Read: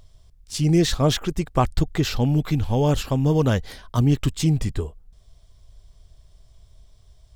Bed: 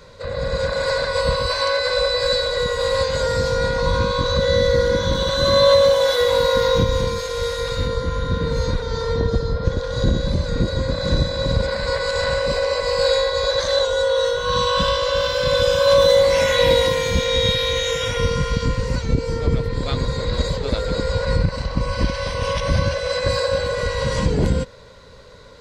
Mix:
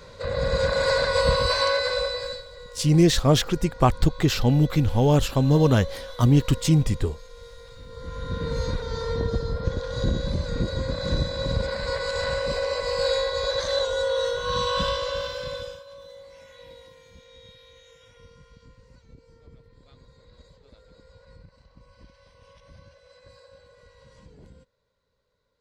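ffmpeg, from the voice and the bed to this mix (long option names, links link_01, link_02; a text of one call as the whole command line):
ffmpeg -i stem1.wav -i stem2.wav -filter_complex "[0:a]adelay=2250,volume=1dB[link_01];[1:a]volume=15.5dB,afade=type=out:start_time=1.54:duration=0.9:silence=0.0841395,afade=type=in:start_time=7.87:duration=0.65:silence=0.149624,afade=type=out:start_time=14.84:duration=1:silence=0.0530884[link_02];[link_01][link_02]amix=inputs=2:normalize=0" out.wav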